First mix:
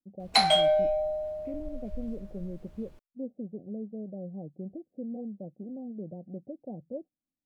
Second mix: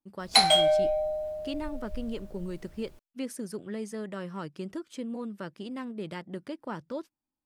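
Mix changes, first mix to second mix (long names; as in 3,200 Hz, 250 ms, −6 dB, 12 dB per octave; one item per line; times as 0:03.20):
speech: remove Chebyshev low-pass with heavy ripple 770 Hz, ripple 6 dB
master: add high-shelf EQ 6,100 Hz +10.5 dB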